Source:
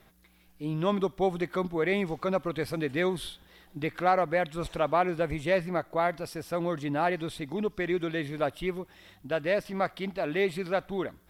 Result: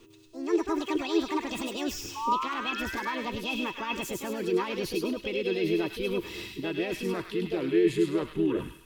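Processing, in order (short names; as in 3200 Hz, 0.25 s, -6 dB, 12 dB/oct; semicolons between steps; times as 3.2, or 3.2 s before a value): speed glide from 178% -> 77%; bell 770 Hz -11 dB 1.8 oct; notch 1000 Hz, Q 28; reverse; compressor 8:1, threshold -44 dBFS, peak gain reduction 18 dB; reverse; limiter -41.5 dBFS, peak gain reduction 9 dB; AGC gain up to 12 dB; painted sound rise, 2.16–3.16, 850–1900 Hz -41 dBFS; small resonant body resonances 340/960/2600 Hz, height 17 dB, ringing for 50 ms; harmoniser +4 st -5 dB; on a send: thin delay 0.103 s, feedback 36%, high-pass 1900 Hz, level -3 dB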